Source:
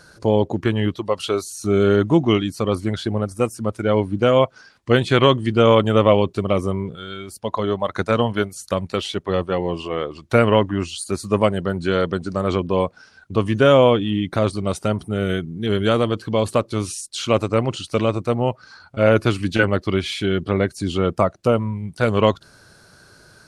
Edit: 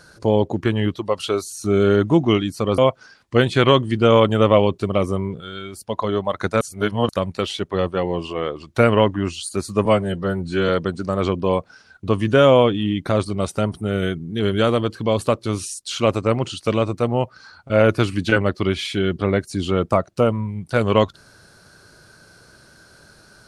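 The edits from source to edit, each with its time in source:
0:02.78–0:04.33: remove
0:08.16–0:08.64: reverse
0:11.40–0:11.96: time-stretch 1.5×

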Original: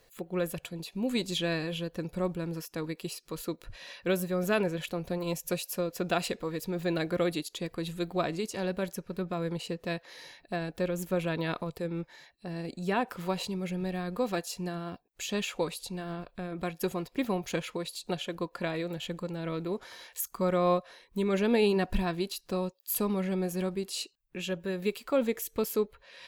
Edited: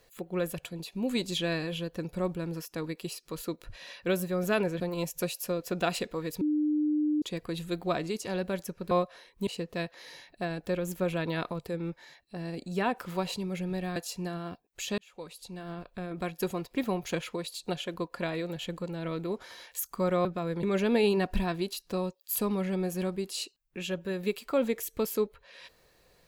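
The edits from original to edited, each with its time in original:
0:04.80–0:05.09: remove
0:06.70–0:07.51: beep over 301 Hz −24 dBFS
0:09.20–0:09.58: swap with 0:20.66–0:21.22
0:14.07–0:14.37: remove
0:15.39–0:16.34: fade in

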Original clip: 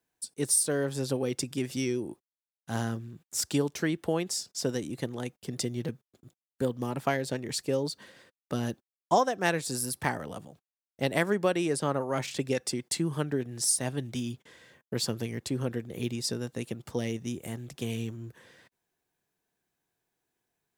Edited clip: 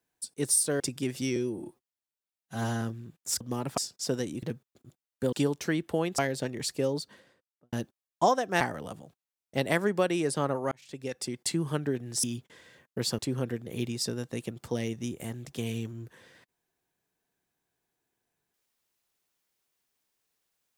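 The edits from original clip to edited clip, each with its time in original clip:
0:00.80–0:01.35: remove
0:01.91–0:02.88: time-stretch 1.5×
0:03.47–0:04.33: swap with 0:06.71–0:07.08
0:04.98–0:05.81: remove
0:07.77–0:08.62: fade out and dull
0:09.50–0:10.06: remove
0:12.17–0:12.94: fade in
0:13.69–0:14.19: remove
0:15.14–0:15.42: remove

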